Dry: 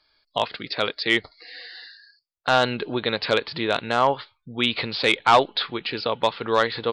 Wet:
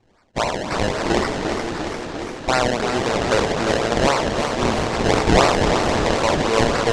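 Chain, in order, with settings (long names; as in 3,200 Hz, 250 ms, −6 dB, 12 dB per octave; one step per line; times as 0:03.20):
peak hold with a decay on every bin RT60 1.13 s
on a send: feedback echo with a low-pass in the loop 542 ms, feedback 63%, low-pass 940 Hz, level −10 dB
on the sum: sample-and-hold swept by an LFO 26×, swing 100% 3.8 Hz
in parallel at +3 dB: downward compressor, threshold −29 dBFS, peak gain reduction 19.5 dB
on the sum: low-pass filter 7,600 Hz 24 dB per octave
feedback echo with a swinging delay time 346 ms, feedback 70%, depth 97 cents, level −7 dB
level −3 dB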